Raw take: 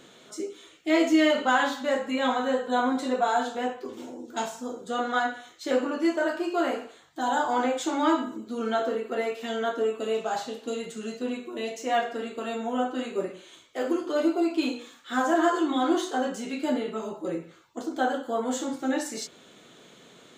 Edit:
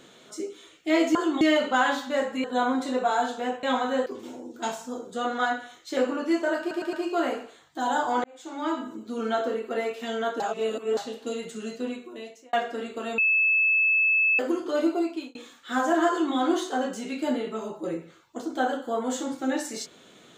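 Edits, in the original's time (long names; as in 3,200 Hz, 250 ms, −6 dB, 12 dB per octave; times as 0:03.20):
0:02.18–0:02.61: move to 0:03.80
0:06.34: stutter 0.11 s, 4 plays
0:07.65–0:08.50: fade in
0:09.81–0:10.38: reverse
0:11.21–0:11.94: fade out
0:12.59–0:13.80: beep over 2,610 Hz −18.5 dBFS
0:14.37–0:14.76: fade out
0:15.50–0:15.76: duplicate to 0:01.15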